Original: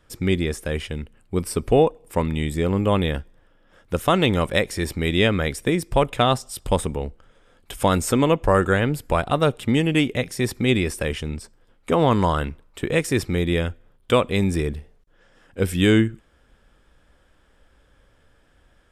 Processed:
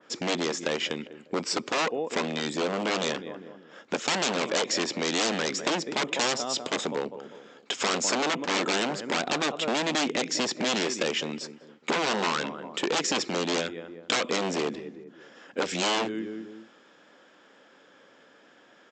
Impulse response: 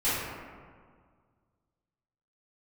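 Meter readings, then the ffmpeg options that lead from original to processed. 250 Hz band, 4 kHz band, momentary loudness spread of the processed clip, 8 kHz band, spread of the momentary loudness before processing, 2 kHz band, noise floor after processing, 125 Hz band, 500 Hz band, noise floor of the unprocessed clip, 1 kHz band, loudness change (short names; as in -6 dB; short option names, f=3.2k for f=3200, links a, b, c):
-9.0 dB, +1.5 dB, 12 LU, +3.0 dB, 10 LU, -2.0 dB, -57 dBFS, -19.0 dB, -7.5 dB, -59 dBFS, -5.0 dB, -6.0 dB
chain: -filter_complex "[0:a]asplit=2[a][b];[b]adelay=199,lowpass=f=1.3k:p=1,volume=-18dB,asplit=2[c][d];[d]adelay=199,lowpass=f=1.3k:p=1,volume=0.41,asplit=2[e][f];[f]adelay=199,lowpass=f=1.3k:p=1,volume=0.41[g];[a][c][e][g]amix=inputs=4:normalize=0,acontrast=68,aresample=16000,aeval=exprs='0.188*(abs(mod(val(0)/0.188+3,4)-2)-1)':c=same,aresample=44100,acompressor=threshold=-24dB:ratio=6,highpass=f=220:w=0.5412,highpass=f=220:w=1.3066,adynamicequalizer=threshold=0.00562:dfrequency=2500:dqfactor=0.7:tfrequency=2500:tqfactor=0.7:attack=5:release=100:ratio=0.375:range=2:mode=boostabove:tftype=highshelf"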